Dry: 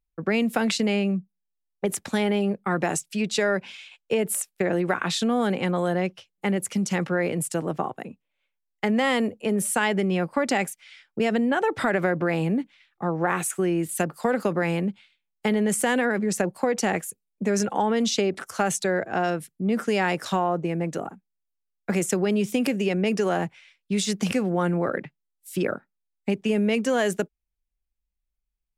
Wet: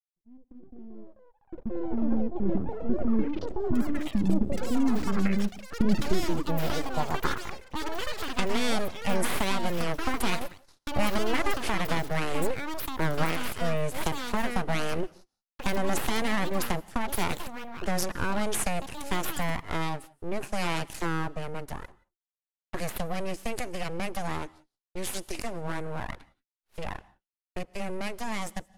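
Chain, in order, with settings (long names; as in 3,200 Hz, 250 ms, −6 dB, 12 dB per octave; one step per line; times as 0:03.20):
source passing by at 0:06.02, 34 m/s, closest 3.7 metres
camcorder AGC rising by 10 dB per second
noise gate −54 dBFS, range −26 dB
low-shelf EQ 84 Hz −9 dB
full-wave rectification
low-pass filter sweep 260 Hz → 11,000 Hz, 0:06.23–0:08.56
in parallel at −5 dB: dead-zone distortion −50 dBFS
on the sum: delay with pitch and tempo change per echo 420 ms, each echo +7 semitones, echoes 3, each echo −6 dB
on a send at −23 dB: convolution reverb, pre-delay 3 ms
on the sum: level +4.5 dB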